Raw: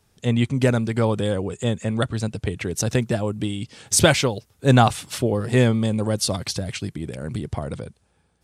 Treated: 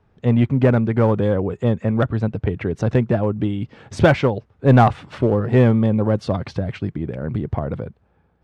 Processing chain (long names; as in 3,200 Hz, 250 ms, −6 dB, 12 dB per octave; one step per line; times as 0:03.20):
low-pass filter 1,600 Hz 12 dB per octave
in parallel at −3 dB: hard clipping −16 dBFS, distortion −10 dB